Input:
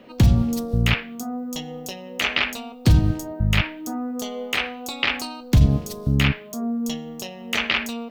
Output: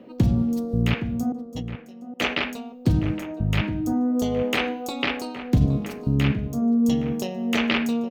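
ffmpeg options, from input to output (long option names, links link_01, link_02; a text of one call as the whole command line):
ffmpeg -i in.wav -filter_complex "[0:a]bandreject=frequency=206.1:width_type=h:width=4,bandreject=frequency=412.2:width_type=h:width=4,bandreject=frequency=618.3:width_type=h:width=4,bandreject=frequency=824.4:width_type=h:width=4,bandreject=frequency=1030.5:width_type=h:width=4,bandreject=frequency=1236.6:width_type=h:width=4,bandreject=frequency=1442.7:width_type=h:width=4,bandreject=frequency=1648.8:width_type=h:width=4,bandreject=frequency=1854.9:width_type=h:width=4,bandreject=frequency=2061:width_type=h:width=4,bandreject=frequency=2267.1:width_type=h:width=4,bandreject=frequency=2473.2:width_type=h:width=4,bandreject=frequency=2679.3:width_type=h:width=4,bandreject=frequency=2885.4:width_type=h:width=4,bandreject=frequency=3091.5:width_type=h:width=4,bandreject=frequency=3297.6:width_type=h:width=4,bandreject=frequency=3503.7:width_type=h:width=4,bandreject=frequency=3709.8:width_type=h:width=4,bandreject=frequency=3915.9:width_type=h:width=4,bandreject=frequency=4122:width_type=h:width=4,bandreject=frequency=4328.1:width_type=h:width=4,bandreject=frequency=4534.2:width_type=h:width=4,bandreject=frequency=4740.3:width_type=h:width=4,bandreject=frequency=4946.4:width_type=h:width=4,bandreject=frequency=5152.5:width_type=h:width=4,bandreject=frequency=5358.6:width_type=h:width=4,bandreject=frequency=5564.7:width_type=h:width=4,bandreject=frequency=5770.8:width_type=h:width=4,bandreject=frequency=5976.9:width_type=h:width=4,bandreject=frequency=6183:width_type=h:width=4,bandreject=frequency=6389.1:width_type=h:width=4,bandreject=frequency=6595.2:width_type=h:width=4,asettb=1/sr,asplit=3[link_01][link_02][link_03];[link_01]atrim=end=1.324[link_04];[link_02]atrim=start=1.32:end=2.37,asetpts=PTS-STARTPTS,afade=type=in:duration=0.004:curve=qsin,afade=type=out:start_time=1.046:duration=0.004:curve=qsin,agate=range=-26dB:threshold=-27dB:ratio=16:detection=peak[link_05];[link_03]atrim=start=2.366[link_06];[link_04][link_05]acrossfade=duration=0.004:curve1=hsin:curve2=qsin[link_07];[link_07][link_06]acrossfade=duration=0.004:curve1=qsin:curve2=hsin,equalizer=frequency=280:width_type=o:width=3:gain=12.5,dynaudnorm=framelen=180:gausssize=5:maxgain=12dB,asplit=2[link_08][link_09];[link_09]adelay=816.3,volume=-11dB,highshelf=frequency=4000:gain=-18.4[link_10];[link_08][link_10]amix=inputs=2:normalize=0,volume=-8dB" out.wav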